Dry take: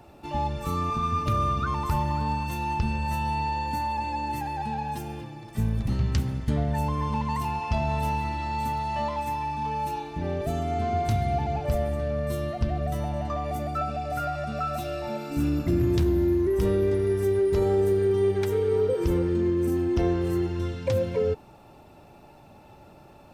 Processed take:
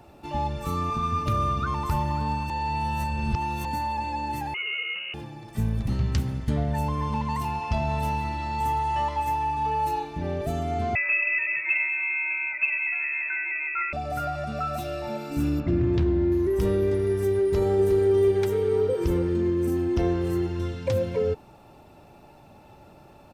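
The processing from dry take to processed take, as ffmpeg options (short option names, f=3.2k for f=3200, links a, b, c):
-filter_complex "[0:a]asettb=1/sr,asplit=3[a][b][c];[a]atrim=end=4.544[d];[b]atrim=start=4.54:end=5.14,asetpts=PTS-STARTPTS,afade=t=in:d=0.004:c=qsin,afade=t=out:st=0.596:d=0.004:c=qsin,lowpass=f=2.6k:t=q:w=0.5098,lowpass=f=2.6k:t=q:w=0.6013,lowpass=f=2.6k:t=q:w=0.9,lowpass=f=2.6k:t=q:w=2.563,afreqshift=-3000[e];[c]atrim=start=5.136[f];[d][e]acrossfade=d=0.004:c1=hsin:c2=qsin[g];[g][f]acrossfade=d=0.004:c1=qsin:c2=hsin,asettb=1/sr,asplit=3[h][i][j];[h]atrim=end=8.604[k];[i]atrim=start=8.6:end=10.05,asetpts=PTS-STARTPTS,afade=t=in:d=0.004:c=qsin,afade=t=out:st=1.446:d=0.004:c=qsin,aecho=1:1:2.4:0.65,atrim=end_sample=63945[l];[j]atrim=start=10.046[m];[k][l]acrossfade=d=0.004:c1=hsin:c2=qsin[n];[n][m]acrossfade=d=0.004:c1=qsin:c2=hsin,asettb=1/sr,asplit=3[o][p][q];[o]atrim=end=10.954[r];[p]atrim=start=10.95:end=13.93,asetpts=PTS-STARTPTS,afade=t=in:d=0.004:c=qsin,afade=t=out:st=2.976:d=0.004:c=qsin,lowpass=f=2.3k:t=q:w=0.5098,lowpass=f=2.3k:t=q:w=0.6013,lowpass=f=2.3k:t=q:w=0.9,lowpass=f=2.3k:t=q:w=2.563,afreqshift=-2700[s];[q]atrim=start=13.926[t];[r][s]acrossfade=d=0.004:c1=hsin:c2=qsin[u];[u][t]acrossfade=d=0.004:c1=qsin:c2=hsin,asettb=1/sr,asplit=3[v][w][x];[v]atrim=end=15.604[y];[w]atrim=start=15.6:end=16.32,asetpts=PTS-STARTPTS,afade=t=in:d=0.004:c=qsin,afade=t=out:st=0.716:d=0.004:c=qsin,lowpass=3.2k[z];[x]atrim=start=16.316[aa];[y][z]acrossfade=d=0.004:c1=hsin:c2=qsin[ab];[ab][aa]acrossfade=d=0.004:c1=qsin:c2=hsin,asplit=2[ac][ad];[ad]afade=t=in:st=17.43:d=0.01,afade=t=out:st=18.1:d=0.01,aecho=0:1:360|720|1080|1440:0.398107|0.139338|0.0487681|0.0170688[ae];[ac][ae]amix=inputs=2:normalize=0,asplit=3[af][ag][ah];[af]atrim=end=2.502[ai];[ag]atrim=start=2.498:end=3.652,asetpts=PTS-STARTPTS,areverse[aj];[ah]atrim=start=3.648[ak];[ai][aj]acrossfade=d=0.004:c1=hsin:c2=hsin[al];[al][ak]acrossfade=d=0.004:c1=hsin:c2=hsin"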